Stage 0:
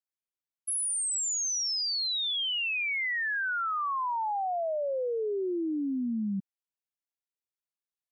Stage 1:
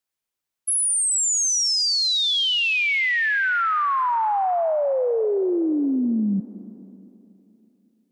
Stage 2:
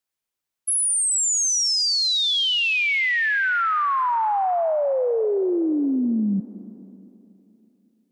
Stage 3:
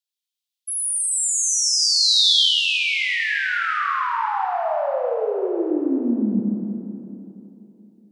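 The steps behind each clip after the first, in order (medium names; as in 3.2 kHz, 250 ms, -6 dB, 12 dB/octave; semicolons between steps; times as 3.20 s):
reverberation RT60 3.2 s, pre-delay 164 ms, DRR 16 dB; trim +9 dB
no audible change
Schroeder reverb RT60 3.2 s, combs from 26 ms, DRR -2.5 dB; high-pass sweep 3.5 kHz -> 110 Hz, 2.36–3.62 s; trim -6 dB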